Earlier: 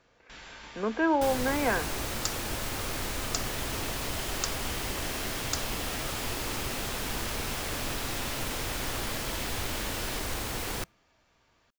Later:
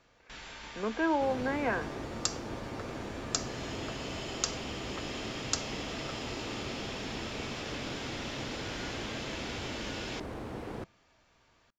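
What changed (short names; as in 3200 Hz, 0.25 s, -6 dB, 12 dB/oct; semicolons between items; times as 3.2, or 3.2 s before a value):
speech -3.5 dB; first sound: send on; second sound: add band-pass 270 Hz, Q 0.57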